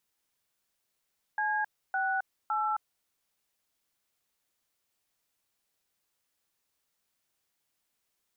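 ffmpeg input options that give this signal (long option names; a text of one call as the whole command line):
ffmpeg -f lavfi -i "aevalsrc='0.0335*clip(min(mod(t,0.56),0.266-mod(t,0.56))/0.002,0,1)*(eq(floor(t/0.56),0)*(sin(2*PI*852*mod(t,0.56))+sin(2*PI*1633*mod(t,0.56)))+eq(floor(t/0.56),1)*(sin(2*PI*770*mod(t,0.56))+sin(2*PI*1477*mod(t,0.56)))+eq(floor(t/0.56),2)*(sin(2*PI*852*mod(t,0.56))+sin(2*PI*1336*mod(t,0.56))))':duration=1.68:sample_rate=44100" out.wav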